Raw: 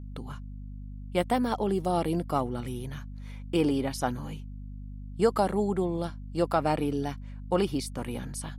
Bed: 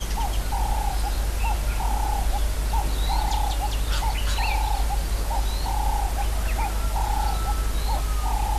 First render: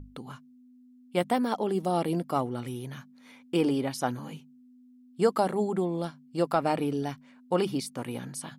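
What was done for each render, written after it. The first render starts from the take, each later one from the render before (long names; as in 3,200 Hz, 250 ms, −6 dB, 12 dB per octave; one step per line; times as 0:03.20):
mains-hum notches 50/100/150/200 Hz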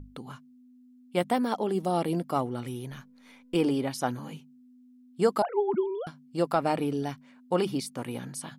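0:02.91–0:03.55: gain on one half-wave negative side −3 dB
0:05.42–0:06.07: three sine waves on the formant tracks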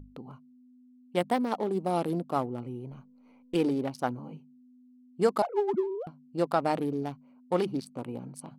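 adaptive Wiener filter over 25 samples
low-shelf EQ 180 Hz −4 dB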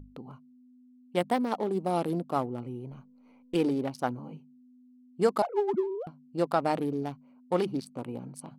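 no processing that can be heard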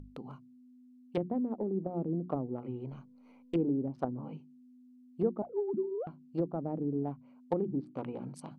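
treble cut that deepens with the level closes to 330 Hz, closed at −26 dBFS
mains-hum notches 60/120/180/240/300/360 Hz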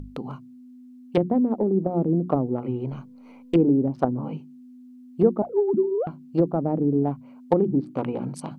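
level +11.5 dB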